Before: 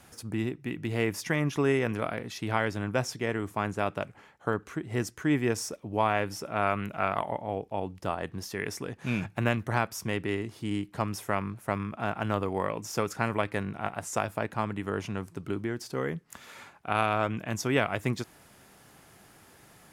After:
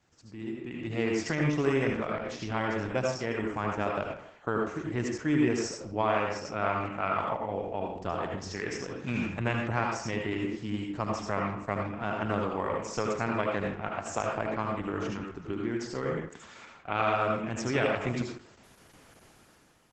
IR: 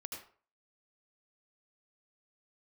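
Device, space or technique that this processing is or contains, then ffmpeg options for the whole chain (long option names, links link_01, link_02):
speakerphone in a meeting room: -filter_complex "[0:a]asplit=3[link_01][link_02][link_03];[link_01]afade=type=out:start_time=15.11:duration=0.02[link_04];[link_02]equalizer=frequency=100:width_type=o:width=0.33:gain=-4,equalizer=frequency=630:width_type=o:width=0.33:gain=-11,equalizer=frequency=8000:width_type=o:width=0.33:gain=-7,afade=type=in:start_time=15.11:duration=0.02,afade=type=out:start_time=15.7:duration=0.02[link_05];[link_03]afade=type=in:start_time=15.7:duration=0.02[link_06];[link_04][link_05][link_06]amix=inputs=3:normalize=0[link_07];[1:a]atrim=start_sample=2205[link_08];[link_07][link_08]afir=irnorm=-1:irlink=0,asplit=2[link_09][link_10];[link_10]adelay=160,highpass=300,lowpass=3400,asoftclip=type=hard:threshold=-21.5dB,volume=-14dB[link_11];[link_09][link_11]amix=inputs=2:normalize=0,dynaudnorm=framelen=110:gausssize=13:maxgain=12dB,volume=-8.5dB" -ar 48000 -c:a libopus -b:a 12k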